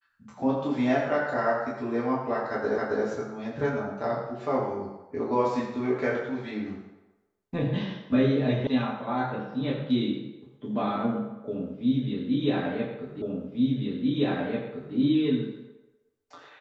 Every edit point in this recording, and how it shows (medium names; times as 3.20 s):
2.78 s: repeat of the last 0.27 s
8.67 s: sound stops dead
13.22 s: repeat of the last 1.74 s